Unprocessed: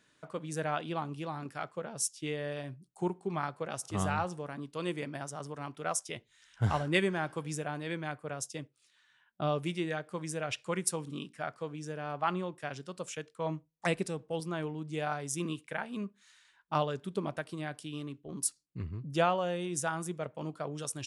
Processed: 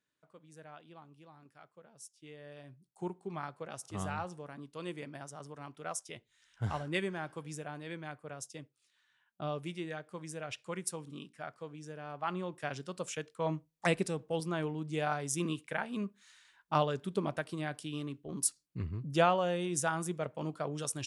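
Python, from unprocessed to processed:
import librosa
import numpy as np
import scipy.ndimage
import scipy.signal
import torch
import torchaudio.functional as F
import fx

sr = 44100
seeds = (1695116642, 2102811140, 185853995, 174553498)

y = fx.gain(x, sr, db=fx.line((2.06, -18.5), (3.05, -6.0), (12.2, -6.0), (12.62, 1.0)))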